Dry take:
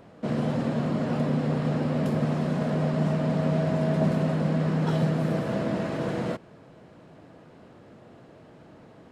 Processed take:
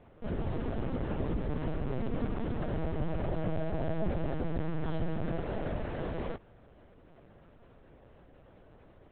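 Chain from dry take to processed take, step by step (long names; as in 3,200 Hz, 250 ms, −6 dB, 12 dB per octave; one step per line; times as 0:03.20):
0:01.99–0:02.60: comb filter 4 ms, depth 35%
linear-prediction vocoder at 8 kHz pitch kept
level −6.5 dB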